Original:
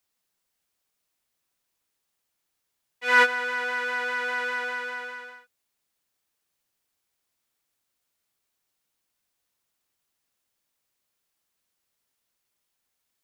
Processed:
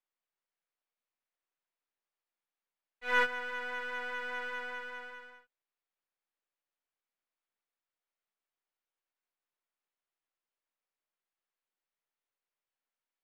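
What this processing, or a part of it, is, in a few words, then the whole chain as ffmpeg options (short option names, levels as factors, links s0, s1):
crystal radio: -af "highpass=370,lowpass=2600,aeval=exprs='if(lt(val(0),0),0.447*val(0),val(0))':c=same,volume=0.447"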